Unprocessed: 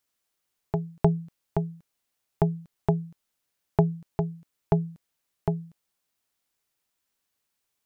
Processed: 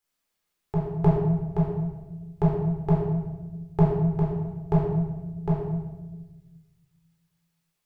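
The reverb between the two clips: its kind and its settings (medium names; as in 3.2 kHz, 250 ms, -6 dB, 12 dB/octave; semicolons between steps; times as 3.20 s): simulated room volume 740 m³, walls mixed, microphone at 4 m; trim -7 dB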